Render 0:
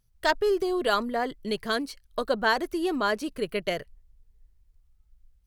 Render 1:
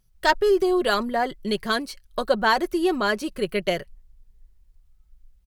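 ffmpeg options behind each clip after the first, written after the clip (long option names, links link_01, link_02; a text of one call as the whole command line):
ffmpeg -i in.wav -af "aecho=1:1:5.4:0.39,volume=3.5dB" out.wav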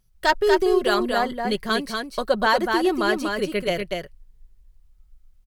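ffmpeg -i in.wav -af "aecho=1:1:240:0.596" out.wav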